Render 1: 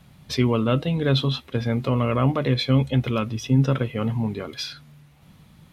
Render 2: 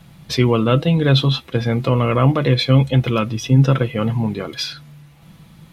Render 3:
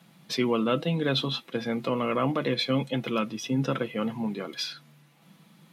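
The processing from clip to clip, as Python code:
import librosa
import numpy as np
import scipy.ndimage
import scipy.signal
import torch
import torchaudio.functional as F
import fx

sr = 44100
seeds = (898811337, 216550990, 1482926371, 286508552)

y1 = x + 0.34 * np.pad(x, (int(6.0 * sr / 1000.0), 0))[:len(x)]
y1 = F.gain(torch.from_numpy(y1), 5.5).numpy()
y2 = scipy.signal.sosfilt(scipy.signal.cheby1(3, 1.0, 190.0, 'highpass', fs=sr, output='sos'), y1)
y2 = F.gain(torch.from_numpy(y2), -7.5).numpy()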